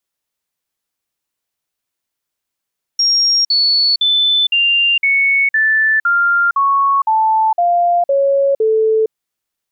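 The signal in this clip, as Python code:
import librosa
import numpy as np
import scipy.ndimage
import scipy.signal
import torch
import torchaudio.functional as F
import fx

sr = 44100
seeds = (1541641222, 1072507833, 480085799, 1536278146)

y = fx.stepped_sweep(sr, from_hz=5580.0, direction='down', per_octave=3, tones=12, dwell_s=0.46, gap_s=0.05, level_db=-10.0)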